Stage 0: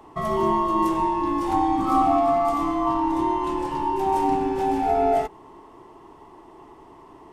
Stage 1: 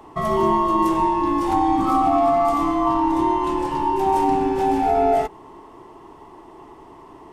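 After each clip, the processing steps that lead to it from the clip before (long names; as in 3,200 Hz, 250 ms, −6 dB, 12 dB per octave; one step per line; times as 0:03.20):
boost into a limiter +12 dB
level −8.5 dB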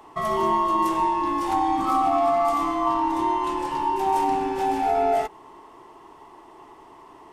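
low-shelf EQ 470 Hz −10 dB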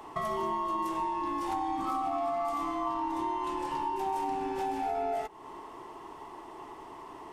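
downward compressor 3 to 1, threshold −35 dBFS, peak gain reduction 12.5 dB
level +1.5 dB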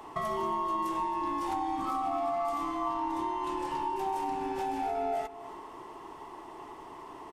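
single-tap delay 275 ms −15.5 dB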